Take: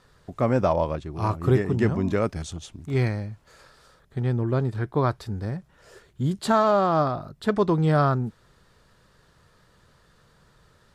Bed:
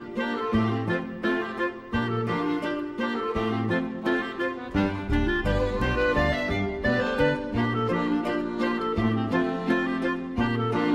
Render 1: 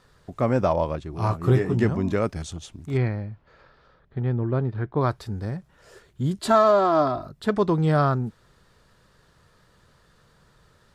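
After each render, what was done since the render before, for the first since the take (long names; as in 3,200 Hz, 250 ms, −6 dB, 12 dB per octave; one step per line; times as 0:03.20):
0:01.11–0:01.84: double-tracking delay 17 ms −6.5 dB
0:02.97–0:05.01: high-frequency loss of the air 280 metres
0:06.39–0:07.27: comb filter 3 ms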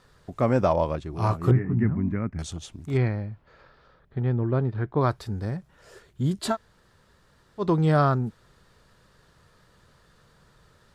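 0:01.51–0:02.39: drawn EQ curve 250 Hz 0 dB, 490 Hz −15 dB, 2,100 Hz −5 dB, 3,500 Hz −29 dB
0:06.52–0:07.62: fill with room tone, crossfade 0.10 s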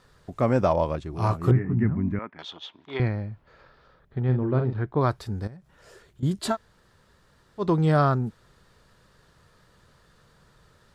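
0:02.19–0:03.00: loudspeaker in its box 470–4,100 Hz, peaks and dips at 970 Hz +8 dB, 1,800 Hz +3 dB, 3,400 Hz +9 dB
0:04.24–0:04.73: double-tracking delay 47 ms −7 dB
0:05.47–0:06.23: downward compressor 3 to 1, threshold −46 dBFS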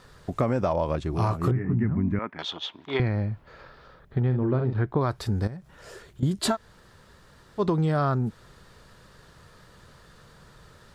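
in parallel at +1 dB: brickwall limiter −16.5 dBFS, peak gain reduction 7 dB
on the sum: downward compressor 6 to 1, threshold −21 dBFS, peak gain reduction 10 dB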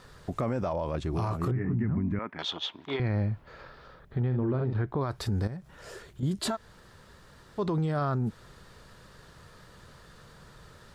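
brickwall limiter −21.5 dBFS, peak gain reduction 9.5 dB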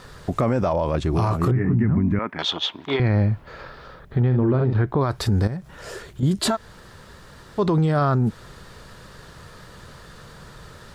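level +9 dB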